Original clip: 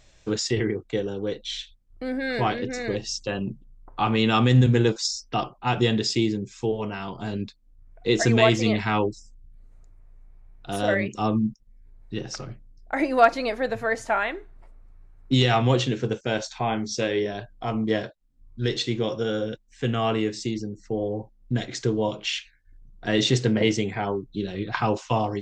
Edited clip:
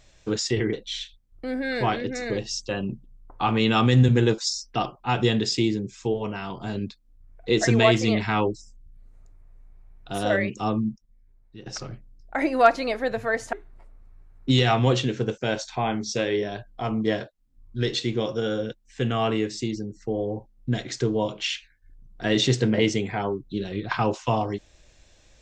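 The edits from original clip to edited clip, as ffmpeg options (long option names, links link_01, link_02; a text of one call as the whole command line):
ffmpeg -i in.wav -filter_complex "[0:a]asplit=4[link_01][link_02][link_03][link_04];[link_01]atrim=end=0.732[link_05];[link_02]atrim=start=1.308:end=12.24,asetpts=PTS-STARTPTS,afade=type=out:start_time=9.762:duration=1.17:silence=0.188365[link_06];[link_03]atrim=start=12.24:end=14.112,asetpts=PTS-STARTPTS,afade=type=in:duration=0.004:curve=hsin:silence=0.188365[link_07];[link_04]atrim=start=14.358[link_08];[link_06][link_07]concat=n=2:v=0:a=1[link_09];[link_05][link_09]acrossfade=duration=0.004:curve1=hsin:curve2=hsin[link_10];[link_10][link_08]acrossfade=duration=0.004:curve1=hsin:curve2=hsin" out.wav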